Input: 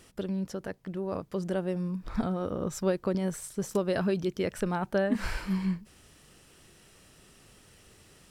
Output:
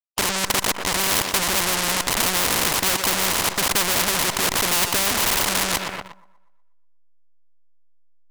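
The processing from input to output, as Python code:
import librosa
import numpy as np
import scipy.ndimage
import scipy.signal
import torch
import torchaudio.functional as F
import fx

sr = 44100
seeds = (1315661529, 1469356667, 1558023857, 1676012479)

p1 = fx.delta_hold(x, sr, step_db=-34.0)
p2 = fx.lowpass_res(p1, sr, hz=1000.0, q=8.7)
p3 = fx.leveller(p2, sr, passes=5)
p4 = fx.low_shelf(p3, sr, hz=150.0, db=-7.0)
p5 = p4 + fx.echo_thinned(p4, sr, ms=121, feedback_pct=45, hz=170.0, wet_db=-20.5, dry=0)
p6 = fx.leveller(p5, sr, passes=3)
p7 = fx.spectral_comp(p6, sr, ratio=4.0)
y = p7 * librosa.db_to_amplitude(6.5)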